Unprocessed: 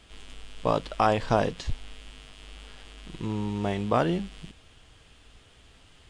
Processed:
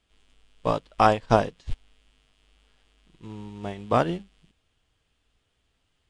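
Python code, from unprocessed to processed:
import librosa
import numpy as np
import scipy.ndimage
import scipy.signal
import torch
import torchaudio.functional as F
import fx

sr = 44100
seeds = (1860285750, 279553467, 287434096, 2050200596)

y = fx.upward_expand(x, sr, threshold_db=-35.0, expansion=2.5)
y = F.gain(torch.from_numpy(y), 6.5).numpy()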